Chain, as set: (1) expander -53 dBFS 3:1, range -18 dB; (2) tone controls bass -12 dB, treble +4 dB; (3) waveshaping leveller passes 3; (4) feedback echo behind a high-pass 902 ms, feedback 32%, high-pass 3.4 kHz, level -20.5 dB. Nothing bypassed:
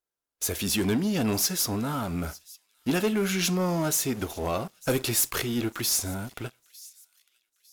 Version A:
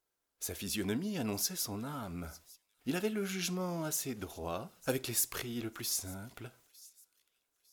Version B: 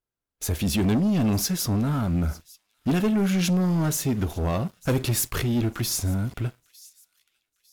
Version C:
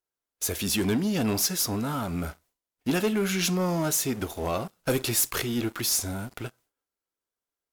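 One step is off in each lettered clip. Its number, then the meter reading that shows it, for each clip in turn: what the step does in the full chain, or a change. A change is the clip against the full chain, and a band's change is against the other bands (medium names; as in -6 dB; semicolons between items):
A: 3, crest factor change +9.5 dB; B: 2, 125 Hz band +9.5 dB; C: 4, echo-to-direct -31.0 dB to none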